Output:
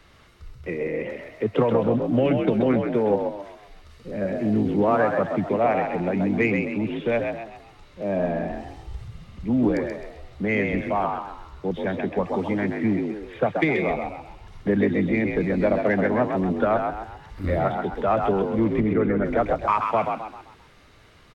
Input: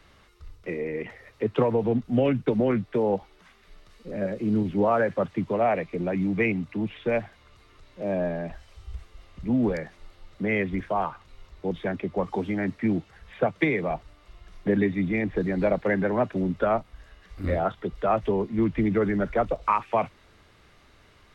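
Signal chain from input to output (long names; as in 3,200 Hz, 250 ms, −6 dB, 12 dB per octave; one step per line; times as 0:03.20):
in parallel at −11 dB: soft clipping −20.5 dBFS, distortion −13 dB
0:18.80–0:19.25: on the sum: high-frequency loss of the air 350 metres
echo with shifted repeats 131 ms, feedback 40%, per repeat +52 Hz, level −5 dB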